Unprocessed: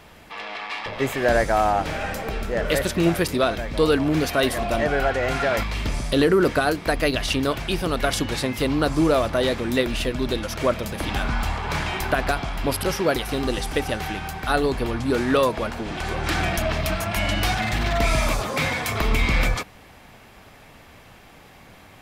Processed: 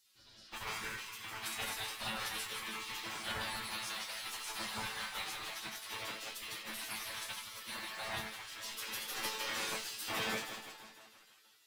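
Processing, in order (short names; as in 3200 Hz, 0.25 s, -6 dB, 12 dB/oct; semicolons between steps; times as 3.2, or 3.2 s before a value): on a send: echo with dull and thin repeats by turns 0.151 s, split 1500 Hz, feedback 80%, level -4.5 dB; on the sum: spectral gate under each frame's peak -20 dB weak; resonator 110 Hz, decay 0.33 s, harmonics all, mix 90%; flutter echo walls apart 8.6 m, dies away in 0.37 s; in parallel at -11.5 dB: bit-crush 7-bit; on the sum: plain phase-vocoder stretch 0.53×; low shelf 160 Hz +3.5 dB; gain +1 dB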